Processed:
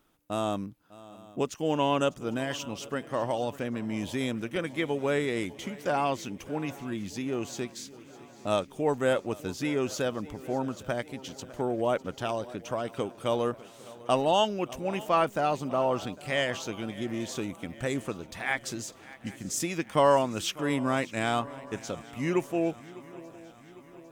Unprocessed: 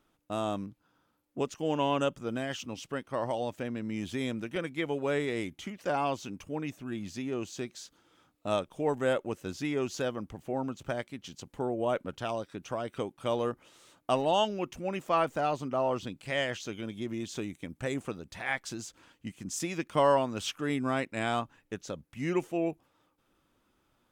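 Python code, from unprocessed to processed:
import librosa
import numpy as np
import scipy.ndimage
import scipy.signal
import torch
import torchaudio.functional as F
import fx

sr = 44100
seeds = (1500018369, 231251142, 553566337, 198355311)

y = fx.high_shelf(x, sr, hz=11000.0, db=8.5)
y = fx.echo_swing(y, sr, ms=802, ratio=3, feedback_pct=56, wet_db=-19.5)
y = F.gain(torch.from_numpy(y), 2.5).numpy()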